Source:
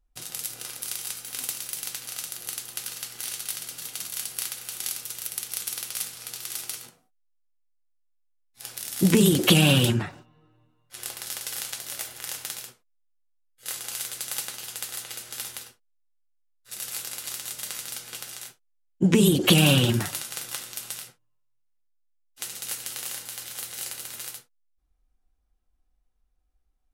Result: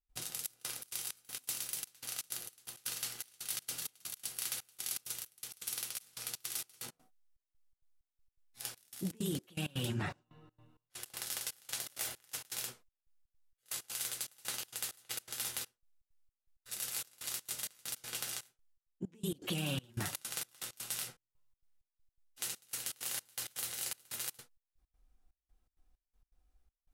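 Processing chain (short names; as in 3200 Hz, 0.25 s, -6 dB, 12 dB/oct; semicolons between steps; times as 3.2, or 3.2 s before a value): reverse; compressor 6:1, threshold -36 dBFS, peak gain reduction 21 dB; reverse; step gate ".xxxx..xx.xx..x" 163 bpm -24 dB; gain +1 dB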